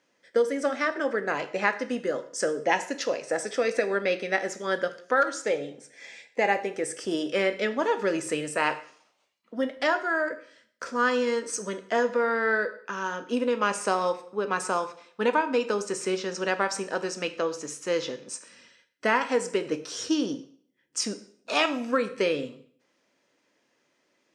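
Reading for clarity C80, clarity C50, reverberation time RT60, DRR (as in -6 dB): 17.0 dB, 14.0 dB, 0.55 s, 9.0 dB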